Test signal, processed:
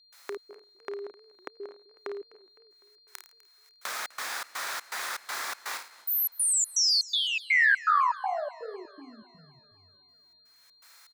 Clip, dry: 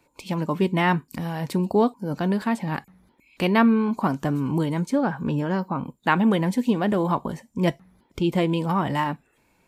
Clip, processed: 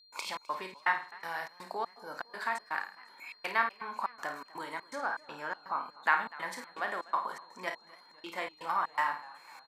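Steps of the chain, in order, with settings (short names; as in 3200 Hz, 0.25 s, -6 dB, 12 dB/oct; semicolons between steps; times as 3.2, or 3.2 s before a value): upward compressor, threshold -26 dBFS; high shelf 5000 Hz -11 dB; doubler 32 ms -9 dB; compressor 2:1, threshold -24 dBFS; Chebyshev high-pass 1400 Hz, order 2; flutter echo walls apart 9.2 m, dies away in 0.39 s; step gate ".xx.xx.xx" 122 bpm -60 dB; bell 2900 Hz -10 dB 0.5 oct; whine 4200 Hz -63 dBFS; warbling echo 0.252 s, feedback 57%, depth 168 cents, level -21 dB; gain +4 dB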